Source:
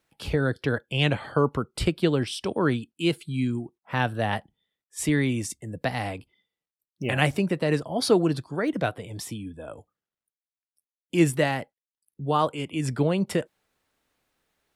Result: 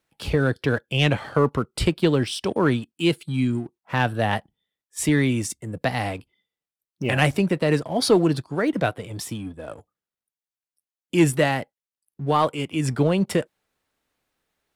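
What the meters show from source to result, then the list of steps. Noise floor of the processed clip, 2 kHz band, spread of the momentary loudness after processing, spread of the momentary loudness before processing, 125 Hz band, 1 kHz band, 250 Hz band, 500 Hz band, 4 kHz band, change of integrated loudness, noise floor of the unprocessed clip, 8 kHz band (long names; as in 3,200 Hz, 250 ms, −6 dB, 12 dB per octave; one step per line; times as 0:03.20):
below −85 dBFS, +3.0 dB, 12 LU, 12 LU, +3.5 dB, +3.0 dB, +3.5 dB, +3.0 dB, +3.0 dB, +3.5 dB, below −85 dBFS, +3.5 dB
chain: leveller curve on the samples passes 1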